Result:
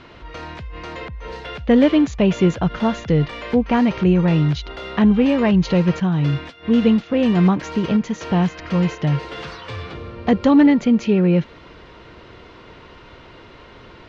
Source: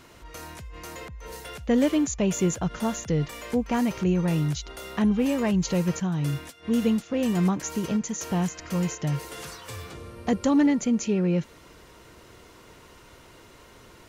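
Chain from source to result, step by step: LPF 4100 Hz 24 dB/oct; gain +8 dB

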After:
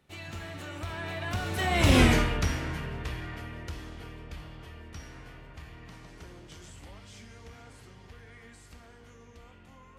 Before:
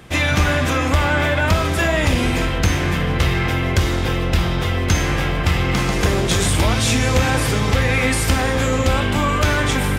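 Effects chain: Doppler pass-by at 2.01, 39 m/s, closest 4.7 m

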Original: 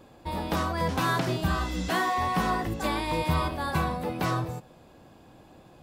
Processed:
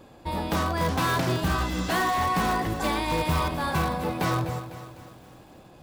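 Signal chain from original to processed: in parallel at -10 dB: wrapped overs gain 20.5 dB; on the sum: lo-fi delay 0.251 s, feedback 55%, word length 8-bit, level -12 dB

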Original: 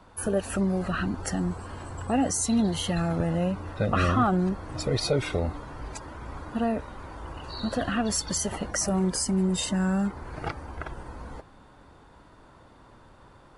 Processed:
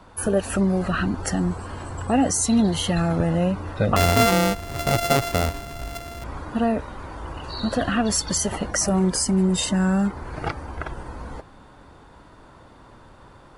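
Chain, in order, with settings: 3.96–6.24 sample sorter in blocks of 64 samples; gain +5 dB

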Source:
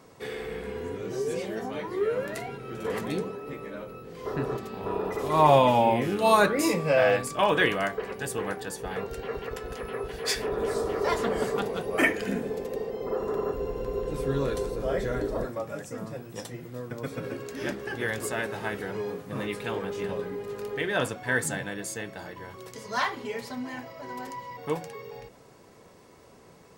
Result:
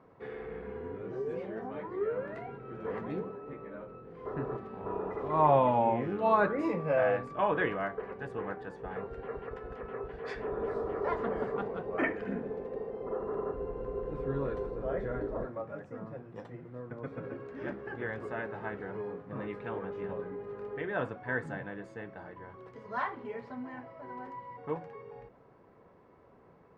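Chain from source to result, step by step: Chebyshev low-pass 1400 Hz, order 2; gain -5 dB

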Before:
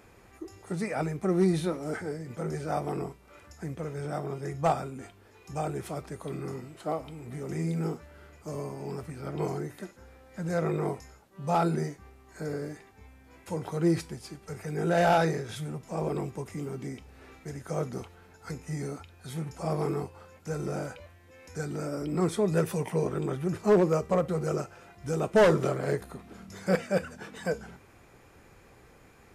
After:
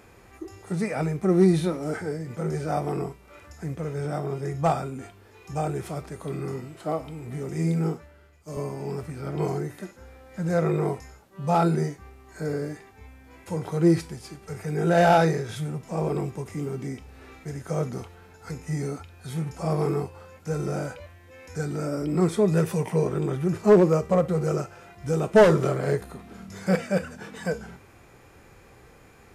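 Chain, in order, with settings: harmonic-percussive split harmonic +6 dB; 7.49–8.57 three-band expander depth 70%

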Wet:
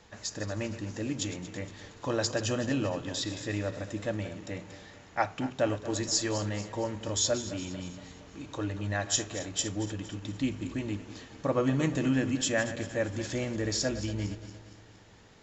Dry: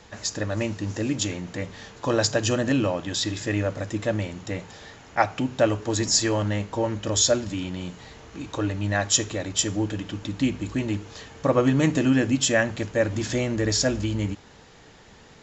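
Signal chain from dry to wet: regenerating reverse delay 0.116 s, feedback 70%, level -13 dB; gain -7.5 dB

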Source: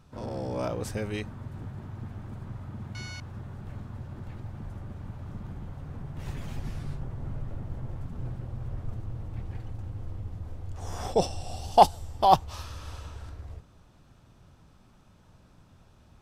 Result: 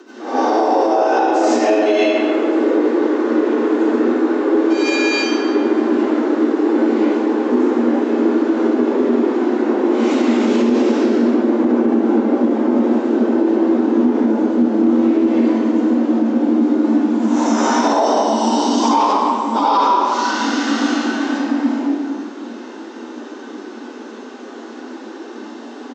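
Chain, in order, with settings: dynamic EQ 320 Hz, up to +4 dB, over -46 dBFS, Q 1; compressor 4:1, threshold -34 dBFS, peak gain reduction 20 dB; plain phase-vocoder stretch 1.6×; added harmonics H 5 -20 dB, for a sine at -18 dBFS; downsampling 16000 Hz; reverb RT60 1.9 s, pre-delay 50 ms, DRR -12.5 dB; frequency shift +210 Hz; maximiser +17 dB; gain -5 dB

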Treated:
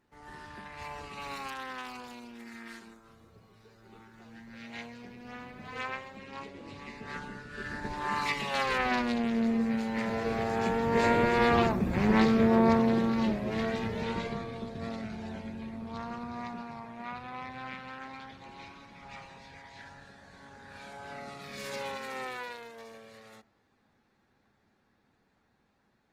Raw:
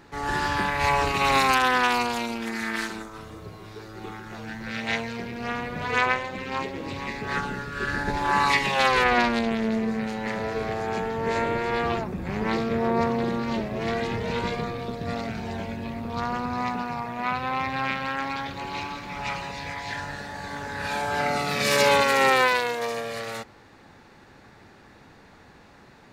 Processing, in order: Doppler pass-by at 11.69, 10 m/s, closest 10 m; bell 220 Hz +5.5 dB 0.29 oct; de-hum 167 Hz, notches 10; gain +1.5 dB; Opus 24 kbps 48000 Hz

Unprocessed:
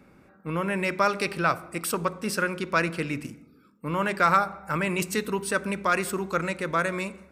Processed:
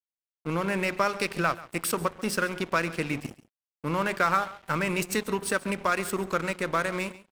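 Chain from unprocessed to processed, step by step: compressor 2:1, threshold -29 dBFS, peak gain reduction 7.5 dB; crossover distortion -41.5 dBFS; echo 0.138 s -18.5 dB; gain +4.5 dB

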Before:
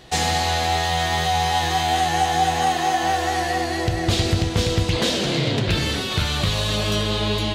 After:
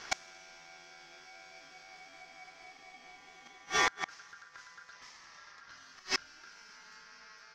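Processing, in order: flipped gate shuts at -14 dBFS, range -31 dB; ring modulator 1500 Hz; resonant high shelf 7600 Hz -7.5 dB, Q 3

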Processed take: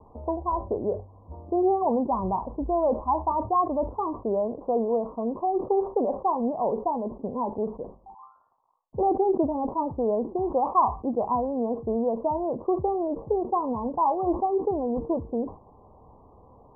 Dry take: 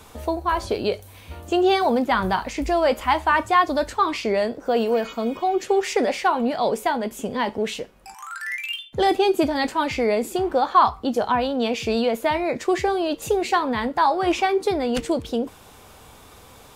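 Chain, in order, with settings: steep low-pass 1100 Hz 96 dB/oct; sustainer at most 150 dB/s; gain -4 dB

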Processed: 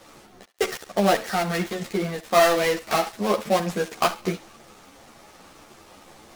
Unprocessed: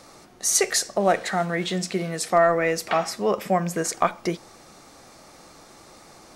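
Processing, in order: switching dead time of 0.17 ms; thinning echo 68 ms, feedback 30%, high-pass 850 Hz, level -14.5 dB; ensemble effect; gain +4.5 dB

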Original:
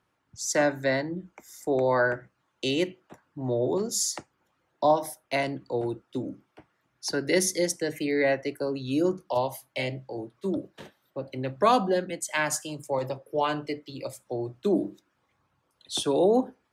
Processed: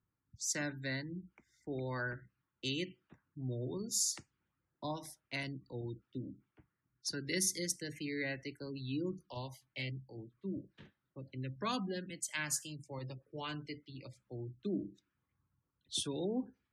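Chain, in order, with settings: passive tone stack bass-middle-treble 6-0-2; spectral gate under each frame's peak -30 dB strong; low-pass opened by the level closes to 1200 Hz, open at -46 dBFS; gain +9 dB

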